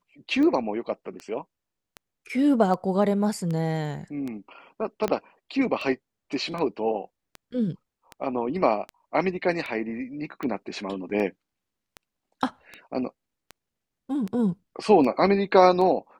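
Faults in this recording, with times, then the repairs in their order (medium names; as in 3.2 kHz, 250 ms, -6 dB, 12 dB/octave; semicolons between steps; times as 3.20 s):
tick 78 rpm -21 dBFS
5.08 s: pop -13 dBFS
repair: de-click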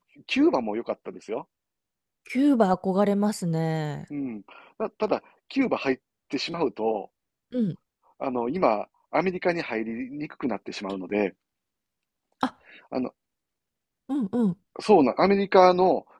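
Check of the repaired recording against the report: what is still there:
5.08 s: pop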